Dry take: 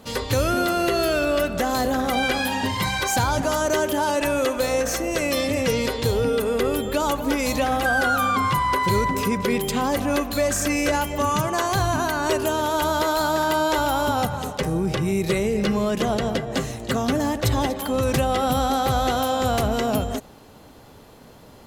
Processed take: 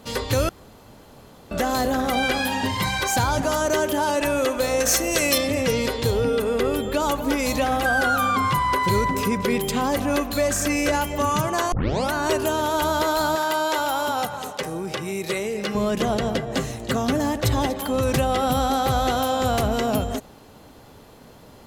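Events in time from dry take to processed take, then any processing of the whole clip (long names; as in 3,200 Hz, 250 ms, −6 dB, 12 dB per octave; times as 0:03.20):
0:00.49–0:01.51: fill with room tone
0:04.80–0:05.38: high-shelf EQ 2,700 Hz +9.5 dB
0:06.10–0:07.02: high-shelf EQ 8,400 Hz −5 dB
0:11.72: tape start 0.41 s
0:13.35–0:15.75: high-pass filter 500 Hz 6 dB per octave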